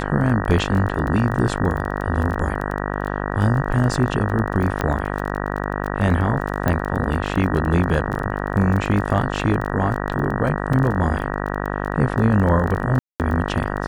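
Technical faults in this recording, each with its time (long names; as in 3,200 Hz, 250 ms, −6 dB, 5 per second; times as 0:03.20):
mains buzz 50 Hz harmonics 38 −25 dBFS
surface crackle 19 per second −25 dBFS
0:04.81: click −8 dBFS
0:06.68: click −7 dBFS
0:10.73: drop-out 4 ms
0:12.99–0:13.20: drop-out 208 ms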